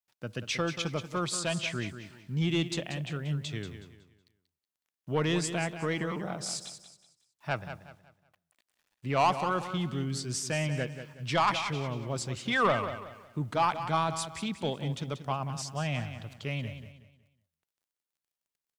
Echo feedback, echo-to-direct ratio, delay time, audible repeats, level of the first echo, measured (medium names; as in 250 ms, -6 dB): 33%, -10.0 dB, 185 ms, 3, -10.5 dB